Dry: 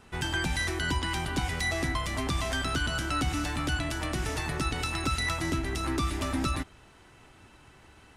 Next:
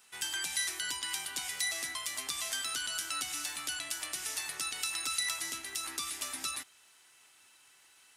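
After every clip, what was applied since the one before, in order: differentiator; trim +5 dB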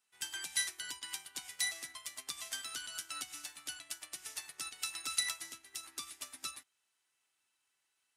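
upward expansion 2.5:1, over -44 dBFS; trim +2 dB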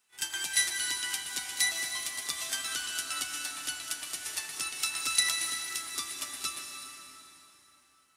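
pre-echo 33 ms -13.5 dB; plate-style reverb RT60 3.8 s, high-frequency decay 0.75×, pre-delay 120 ms, DRR 3 dB; trim +7 dB

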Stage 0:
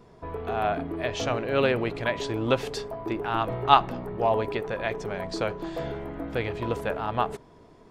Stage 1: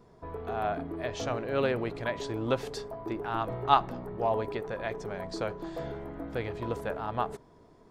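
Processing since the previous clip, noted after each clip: peaking EQ 2.7 kHz -5 dB 0.77 oct; trim -4.5 dB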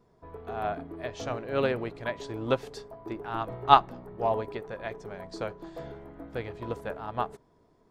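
upward expansion 1.5:1, over -42 dBFS; trim +5.5 dB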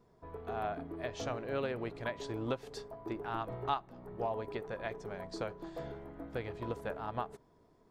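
compression 4:1, threshold -31 dBFS, peak gain reduction 17 dB; trim -2 dB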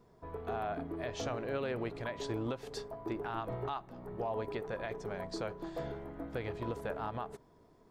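peak limiter -30.5 dBFS, peak gain reduction 10 dB; trim +3 dB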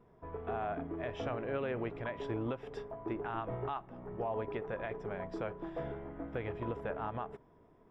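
Savitzky-Golay filter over 25 samples

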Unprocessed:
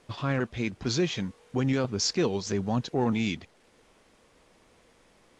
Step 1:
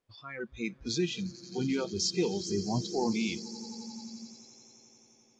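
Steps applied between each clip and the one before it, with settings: echo with a slow build-up 88 ms, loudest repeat 8, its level -16 dB; spectral noise reduction 22 dB; trim -3 dB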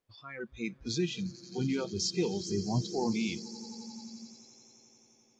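dynamic bell 120 Hz, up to +5 dB, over -46 dBFS, Q 1.3; trim -2 dB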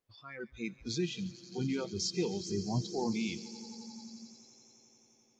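feedback echo behind a high-pass 141 ms, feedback 57%, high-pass 2.1 kHz, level -18 dB; trim -2.5 dB

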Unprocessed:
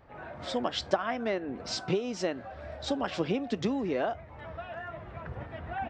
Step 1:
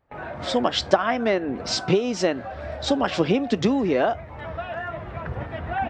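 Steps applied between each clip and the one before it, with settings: gate with hold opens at -42 dBFS; trim +9 dB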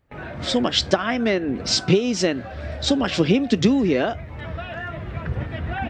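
peaking EQ 840 Hz -10.5 dB 1.8 oct; trim +6 dB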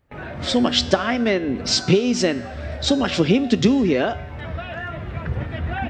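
feedback comb 81 Hz, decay 1.2 s, harmonics odd, mix 60%; trim +8.5 dB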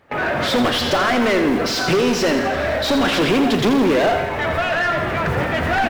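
modulation noise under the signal 28 dB; overdrive pedal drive 34 dB, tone 1.9 kHz, clips at -1.5 dBFS; feedback delay 84 ms, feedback 60%, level -9 dB; trim -7.5 dB

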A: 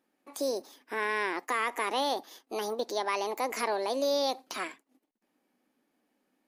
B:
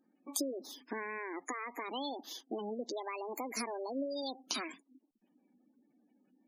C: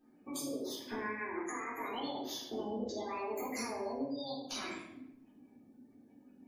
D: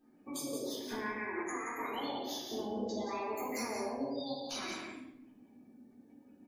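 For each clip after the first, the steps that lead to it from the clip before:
compression 5:1, threshold -36 dBFS, peak gain reduction 10.5 dB; spectral gate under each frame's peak -15 dB strong; high-order bell 940 Hz -10 dB 2.9 oct; trim +8.5 dB
compression 4:1, threshold -47 dBFS, peak gain reduction 14 dB; AM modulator 140 Hz, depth 20%; simulated room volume 270 m³, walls mixed, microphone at 3.7 m
loudspeakers at several distances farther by 40 m -11 dB, 60 m -6 dB

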